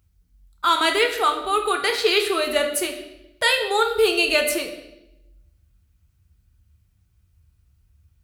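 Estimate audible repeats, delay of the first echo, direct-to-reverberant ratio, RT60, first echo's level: none, none, 3.0 dB, 0.85 s, none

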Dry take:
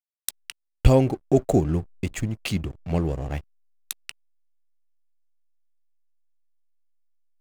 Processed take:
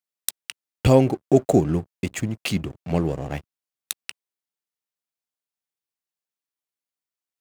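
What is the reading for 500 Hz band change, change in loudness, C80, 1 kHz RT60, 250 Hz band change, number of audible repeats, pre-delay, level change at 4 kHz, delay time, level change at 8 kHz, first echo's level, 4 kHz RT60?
+3.0 dB, +1.5 dB, none, none, +2.5 dB, none, none, +3.0 dB, none, +3.0 dB, none, none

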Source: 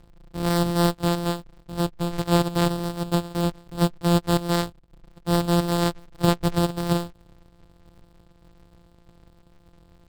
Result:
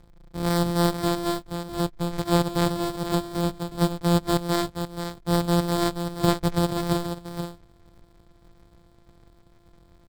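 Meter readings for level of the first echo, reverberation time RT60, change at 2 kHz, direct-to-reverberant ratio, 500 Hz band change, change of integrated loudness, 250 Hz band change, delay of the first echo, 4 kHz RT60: -8.0 dB, none, -1.0 dB, none, -0.5 dB, -1.5 dB, -1.0 dB, 0.479 s, none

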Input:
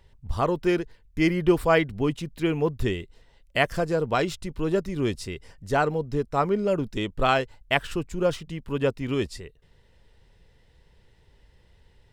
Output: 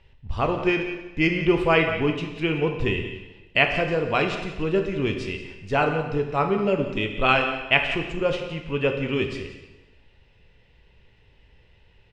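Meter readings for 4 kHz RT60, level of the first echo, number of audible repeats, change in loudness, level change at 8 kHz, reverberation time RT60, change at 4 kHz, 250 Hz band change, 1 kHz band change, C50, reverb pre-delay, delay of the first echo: 1.0 s, -14.0 dB, 1, +2.5 dB, n/a, 1.1 s, +5.0 dB, +0.5 dB, +1.5 dB, 6.0 dB, 7 ms, 0.179 s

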